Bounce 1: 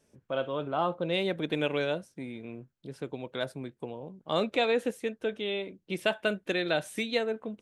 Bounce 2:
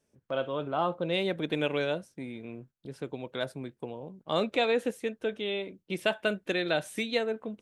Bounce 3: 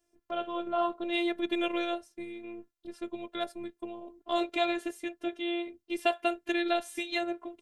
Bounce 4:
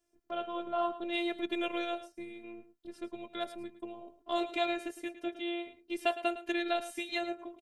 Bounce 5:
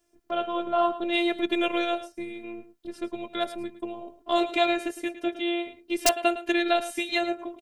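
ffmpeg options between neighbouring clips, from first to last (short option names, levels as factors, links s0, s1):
-af "agate=range=0.447:threshold=0.00224:ratio=16:detection=peak"
-af "afftfilt=real='hypot(re,im)*cos(PI*b)':imag='0':win_size=512:overlap=0.75,volume=1.41"
-af "aecho=1:1:109:0.2,volume=0.708"
-af "aeval=exprs='(mod(6.31*val(0)+1,2)-1)/6.31':c=same,volume=2.66"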